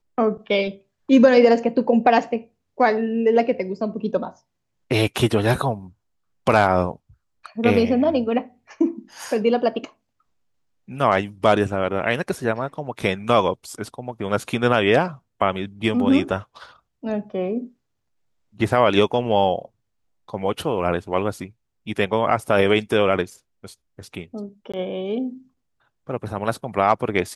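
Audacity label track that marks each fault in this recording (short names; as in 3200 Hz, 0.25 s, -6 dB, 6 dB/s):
24.720000	24.740000	gap 16 ms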